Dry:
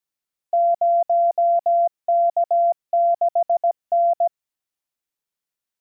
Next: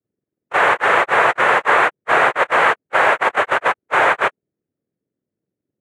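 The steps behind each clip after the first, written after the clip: spectrum mirrored in octaves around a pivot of 760 Hz; noise vocoder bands 3; gain +3.5 dB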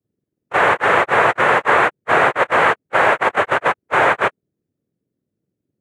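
low shelf 320 Hz +9.5 dB; gain -1 dB

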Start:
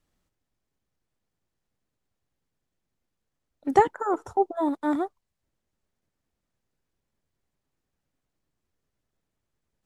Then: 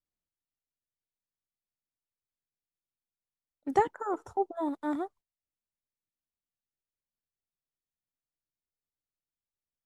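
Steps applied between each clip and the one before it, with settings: gate -48 dBFS, range -15 dB; gain -6.5 dB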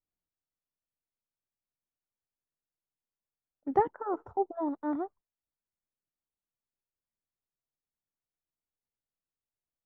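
LPF 1300 Hz 12 dB/oct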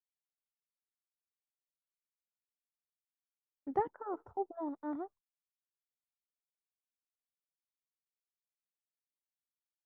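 gate with hold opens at -46 dBFS; gain -7 dB

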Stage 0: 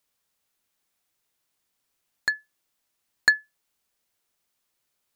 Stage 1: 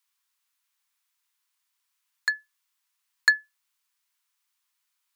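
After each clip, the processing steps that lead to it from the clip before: Chebyshev high-pass 960 Hz, order 4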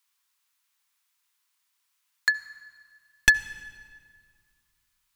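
one-sided fold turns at -13.5 dBFS; reverb RT60 2.0 s, pre-delay 64 ms, DRR 15.5 dB; gain +3 dB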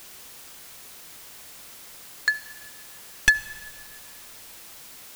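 added noise white -45 dBFS

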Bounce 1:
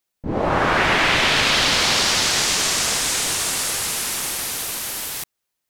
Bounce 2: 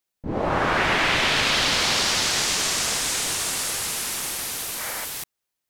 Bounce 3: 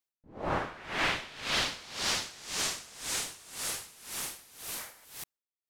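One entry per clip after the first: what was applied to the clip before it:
spectral gain 4.79–5.05, 440–2400 Hz +7 dB; gain -3.5 dB
dB-linear tremolo 1.9 Hz, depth 21 dB; gain -6.5 dB

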